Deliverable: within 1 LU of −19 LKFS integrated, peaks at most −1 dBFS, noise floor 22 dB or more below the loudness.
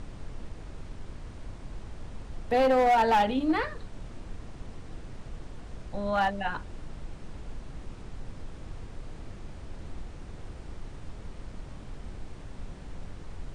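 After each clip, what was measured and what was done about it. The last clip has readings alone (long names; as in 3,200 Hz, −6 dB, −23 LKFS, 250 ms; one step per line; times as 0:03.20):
share of clipped samples 0.7%; peaks flattened at −18.5 dBFS; background noise floor −45 dBFS; target noise floor −48 dBFS; integrated loudness −26.0 LKFS; sample peak −18.5 dBFS; target loudness −19.0 LKFS
→ clipped peaks rebuilt −18.5 dBFS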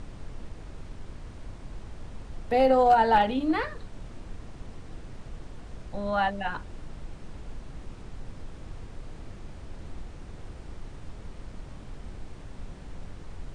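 share of clipped samples 0.0%; background noise floor −45 dBFS; target noise floor −47 dBFS
→ noise reduction from a noise print 6 dB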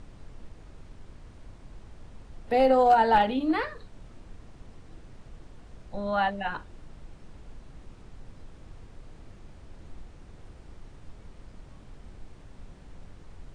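background noise floor −51 dBFS; integrated loudness −24.5 LKFS; sample peak −11.0 dBFS; target loudness −19.0 LKFS
→ level +5.5 dB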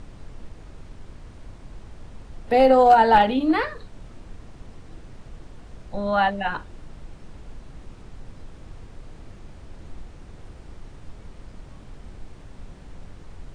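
integrated loudness −19.0 LKFS; sample peak −5.5 dBFS; background noise floor −45 dBFS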